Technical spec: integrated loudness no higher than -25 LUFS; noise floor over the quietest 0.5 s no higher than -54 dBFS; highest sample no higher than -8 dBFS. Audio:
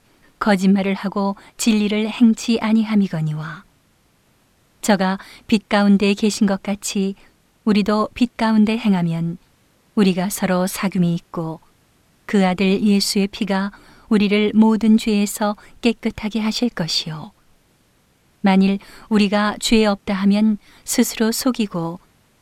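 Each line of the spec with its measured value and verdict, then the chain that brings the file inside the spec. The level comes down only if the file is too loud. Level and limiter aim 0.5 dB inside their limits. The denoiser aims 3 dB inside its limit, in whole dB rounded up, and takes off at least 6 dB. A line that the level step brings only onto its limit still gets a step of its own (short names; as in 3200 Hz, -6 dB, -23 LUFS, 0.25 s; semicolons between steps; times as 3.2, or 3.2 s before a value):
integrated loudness -18.5 LUFS: fail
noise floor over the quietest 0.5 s -59 dBFS: OK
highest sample -4.0 dBFS: fail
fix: gain -7 dB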